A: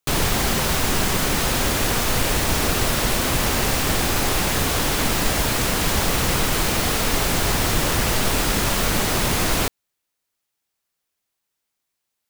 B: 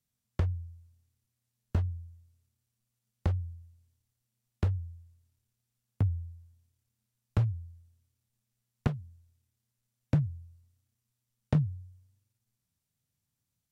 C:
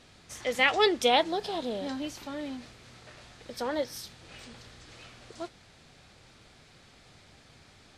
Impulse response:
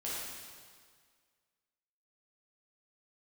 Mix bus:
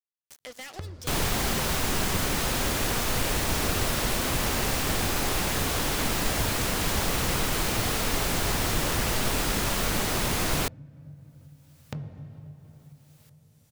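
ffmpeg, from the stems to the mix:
-filter_complex "[0:a]adelay=1000,volume=-6dB[link_01];[1:a]adelay=400,volume=-1.5dB,asplit=2[link_02][link_03];[link_03]volume=-14dB[link_04];[2:a]adynamicequalizer=threshold=0.00251:dfrequency=4900:dqfactor=3.3:tfrequency=4900:tqfactor=3.3:attack=5:release=100:ratio=0.375:range=3.5:mode=boostabove:tftype=bell,volume=25dB,asoftclip=hard,volume=-25dB,bass=frequency=250:gain=1,treble=frequency=4000:gain=6,volume=-10.5dB[link_05];[link_02][link_05]amix=inputs=2:normalize=0,aeval=exprs='sgn(val(0))*max(abs(val(0))-0.0075,0)':channel_layout=same,acompressor=threshold=-41dB:ratio=3,volume=0dB[link_06];[3:a]atrim=start_sample=2205[link_07];[link_04][link_07]afir=irnorm=-1:irlink=0[link_08];[link_01][link_06][link_08]amix=inputs=3:normalize=0,acompressor=mode=upward:threshold=-34dB:ratio=2.5"

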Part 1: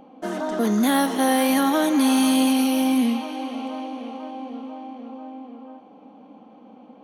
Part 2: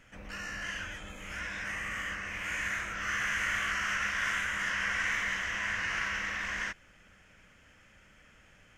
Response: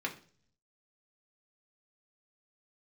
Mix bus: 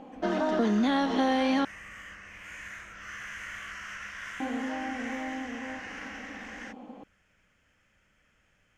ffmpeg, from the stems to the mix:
-filter_complex "[0:a]lowpass=frequency=5200:width=0.5412,lowpass=frequency=5200:width=1.3066,acompressor=threshold=-24dB:ratio=5,volume=1dB,asplit=3[link_01][link_02][link_03];[link_01]atrim=end=1.65,asetpts=PTS-STARTPTS,afade=type=out:start_time=1.646:duration=0.004:curve=hsin[link_04];[link_02]atrim=start=1.65:end=4.4,asetpts=PTS-STARTPTS,volume=0[link_05];[link_03]atrim=start=4.4,asetpts=PTS-STARTPTS,afade=type=in:duration=0.004:curve=hsin[link_06];[link_04][link_05][link_06]concat=n=3:v=0:a=1[link_07];[1:a]volume=-9dB[link_08];[link_07][link_08]amix=inputs=2:normalize=0"

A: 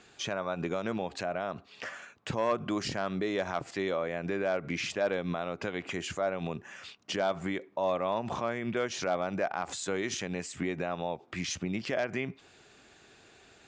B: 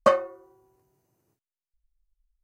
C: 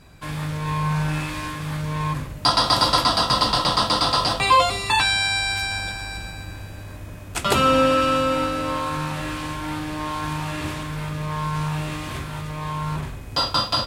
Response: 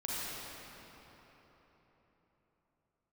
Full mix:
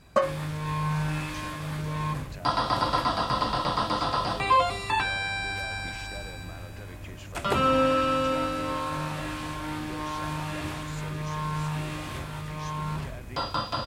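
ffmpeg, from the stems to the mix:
-filter_complex "[0:a]acompressor=threshold=-46dB:ratio=2.5,adelay=1150,volume=-2.5dB[link_01];[1:a]adelay=100,volume=-4dB[link_02];[2:a]acrossover=split=2600[link_03][link_04];[link_04]acompressor=threshold=-33dB:ratio=4:attack=1:release=60[link_05];[link_03][link_05]amix=inputs=2:normalize=0,volume=-5dB[link_06];[link_01][link_02][link_06]amix=inputs=3:normalize=0"

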